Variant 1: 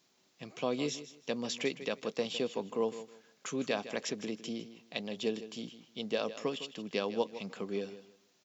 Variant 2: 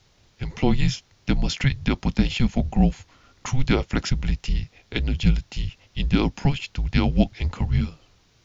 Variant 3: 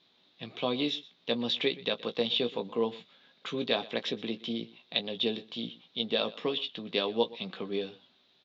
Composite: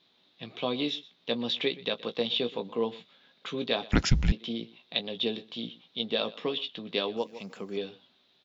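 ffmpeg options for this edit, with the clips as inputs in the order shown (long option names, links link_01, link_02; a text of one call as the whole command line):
ffmpeg -i take0.wav -i take1.wav -i take2.wav -filter_complex "[2:a]asplit=3[link_01][link_02][link_03];[link_01]atrim=end=3.922[link_04];[1:a]atrim=start=3.918:end=4.322[link_05];[link_02]atrim=start=4.318:end=7.172[link_06];[0:a]atrim=start=7.168:end=7.772[link_07];[link_03]atrim=start=7.768[link_08];[link_04][link_05]acrossfade=duration=0.004:curve1=hsin:curve2=hsin[link_09];[link_09][link_06]acrossfade=duration=0.004:curve1=hsin:curve2=hsin[link_10];[link_10][link_07]acrossfade=duration=0.004:curve1=hsin:curve2=hsin[link_11];[link_11][link_08]acrossfade=duration=0.004:curve1=hsin:curve2=hsin" out.wav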